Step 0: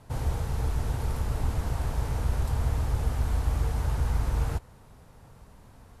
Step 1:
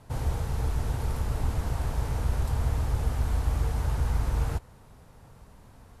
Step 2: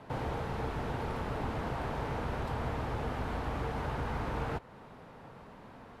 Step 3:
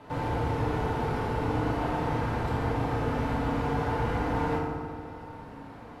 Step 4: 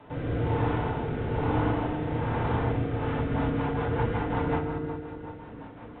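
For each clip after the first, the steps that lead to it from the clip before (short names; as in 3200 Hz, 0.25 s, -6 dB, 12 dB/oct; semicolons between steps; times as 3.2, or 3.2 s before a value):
nothing audible
three-band isolator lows -17 dB, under 160 Hz, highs -19 dB, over 3700 Hz; in parallel at +1 dB: compressor, threshold -45 dBFS, peak gain reduction 11.5 dB
FDN reverb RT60 1.9 s, low-frequency decay 1.45×, high-frequency decay 0.55×, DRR -4 dB
echo with dull and thin repeats by turns 0.125 s, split 800 Hz, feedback 53%, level -7.5 dB; rotary speaker horn 1.1 Hz, later 5.5 Hz, at 2.75; gain +2 dB; A-law 64 kbps 8000 Hz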